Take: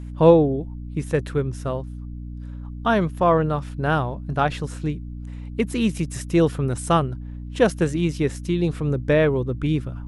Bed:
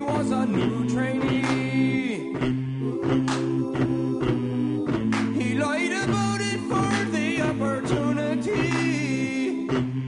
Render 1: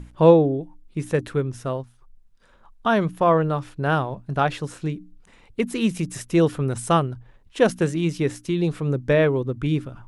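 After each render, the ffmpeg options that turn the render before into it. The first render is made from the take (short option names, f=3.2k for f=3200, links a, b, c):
-af "bandreject=f=60:t=h:w=6,bandreject=f=120:t=h:w=6,bandreject=f=180:t=h:w=6,bandreject=f=240:t=h:w=6,bandreject=f=300:t=h:w=6"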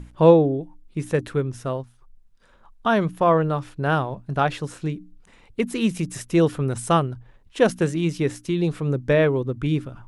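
-af anull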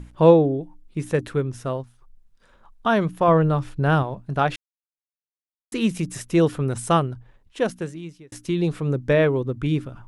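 -filter_complex "[0:a]asettb=1/sr,asplit=3[a][b][c];[a]atrim=end=3.284[d];[b]atrim=start=3.28:end=4.03,asetpts=PTS-STARTPTS,afade=t=in:d=0.004:c=qsin,afade=t=out:st=0.746:d=0.004:c=qsin,lowshelf=f=150:g=9.5[e];[c]atrim=start=4.026[f];[d][e]acrossfade=d=0.004:c1=hsin:c2=qsin[g];[g][f]acrossfade=d=0.004:c1=qsin:c2=hsin,asplit=4[h][i][j][k];[h]atrim=end=4.56,asetpts=PTS-STARTPTS,afade=t=out:st=4.556:d=0.004:c=hsin[l];[i]atrim=start=4.56:end=5.72,asetpts=PTS-STARTPTS,volume=0[m];[j]atrim=start=5.72:end=8.32,asetpts=PTS-STARTPTS,afade=t=in:d=0.004:c=hsin,afade=t=out:st=1.36:d=1.24[n];[k]atrim=start=8.32,asetpts=PTS-STARTPTS,afade=t=in:d=0.004:c=hsin[o];[l][m][n][o]concat=n=4:v=0:a=1"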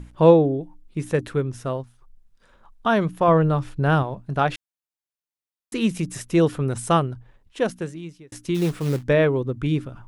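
-filter_complex "[0:a]asplit=3[a][b][c];[a]afade=t=out:st=8.54:d=0.02[d];[b]acrusher=bits=4:mode=log:mix=0:aa=0.000001,afade=t=in:st=8.54:d=0.02,afade=t=out:st=9.02:d=0.02[e];[c]afade=t=in:st=9.02:d=0.02[f];[d][e][f]amix=inputs=3:normalize=0"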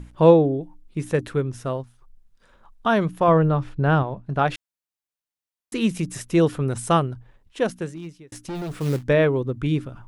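-filter_complex "[0:a]asettb=1/sr,asplit=3[a][b][c];[a]atrim=end=3.364[d];[b]atrim=start=3.36:end=4.45,asetpts=PTS-STARTPTS,afade=t=in:d=0.004:c=qsin,afade=t=out:st=1.086:d=0.004:c=qsin,aemphasis=mode=reproduction:type=50fm[e];[c]atrim=start=4.446[f];[d][e]acrossfade=d=0.004:c1=hsin:c2=qsin[g];[g][f]acrossfade=d=0.004:c1=qsin:c2=hsin,asettb=1/sr,asplit=3[h][i][j];[h]atrim=end=7.884[k];[i]atrim=start=7.88:end=8.76,asetpts=PTS-STARTPTS,afade=t=in:d=0.004:c=qsin,afade=t=out:st=0.876:d=0.004:c=qsin,asoftclip=type=hard:threshold=-28dB[l];[j]atrim=start=8.756[m];[k][l]acrossfade=d=0.004:c1=hsin:c2=qsin[n];[n][m]acrossfade=d=0.004:c1=qsin:c2=hsin"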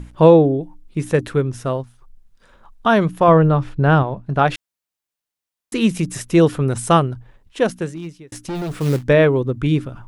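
-af "volume=5dB,alimiter=limit=-1dB:level=0:latency=1"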